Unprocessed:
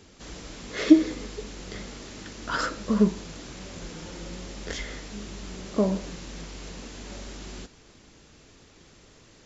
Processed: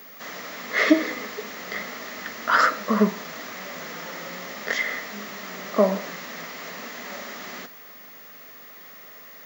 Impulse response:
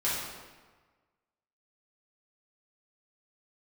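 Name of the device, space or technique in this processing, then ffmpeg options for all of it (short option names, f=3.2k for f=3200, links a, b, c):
old television with a line whistle: -af "highpass=f=210:w=0.5412,highpass=f=210:w=1.3066,equalizer=f=330:t=q:w=4:g=-9,equalizer=f=760:t=q:w=4:g=3,equalizer=f=1.1k:t=q:w=4:g=4,equalizer=f=1.8k:t=q:w=4:g=5,lowpass=f=6.9k:w=0.5412,lowpass=f=6.9k:w=1.3066,aeval=exprs='val(0)+0.00447*sin(2*PI*15625*n/s)':c=same,equalizer=f=100:t=o:w=0.33:g=11,equalizer=f=630:t=o:w=0.33:g=6,equalizer=f=1.25k:t=o:w=0.33:g=7,equalizer=f=2k:t=o:w=0.33:g=9,volume=3.5dB"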